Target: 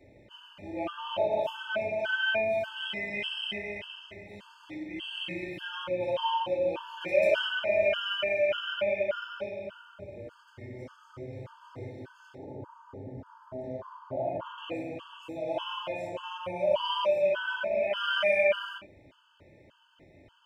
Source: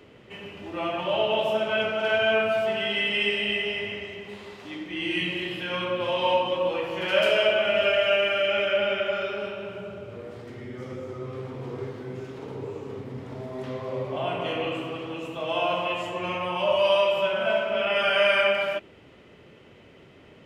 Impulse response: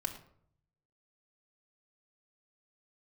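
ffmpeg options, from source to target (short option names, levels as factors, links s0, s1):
-filter_complex "[0:a]asettb=1/sr,asplit=3[s0][s1][s2];[s0]atrim=end=12.354[s3];[s1]atrim=start=12.35:end=14.58,asetpts=PTS-STARTPTS,afade=t=in:d=0.004:c=qsin,afade=t=out:st=2.226:d=0.004:c=qsin,highshelf=f=1700:t=q:w=1.5:g=-9.5[s4];[s2]atrim=start=14.576[s5];[s3][s4]acrossfade=d=0.004:c1=hsin:c2=qsin[s6];[s6][s5]acrossfade=d=0.004:c1=qsin:c2=hsin[s7];[1:a]atrim=start_sample=2205,atrim=end_sample=3528[s8];[s7][s8]afir=irnorm=-1:irlink=0,afftfilt=real='re*gt(sin(2*PI*1.7*pts/sr)*(1-2*mod(floor(b*sr/1024/870),2)),0)':imag='im*gt(sin(2*PI*1.7*pts/sr)*(1-2*mod(floor(b*sr/1024/870),2)),0)':win_size=1024:overlap=0.75,volume=0.531"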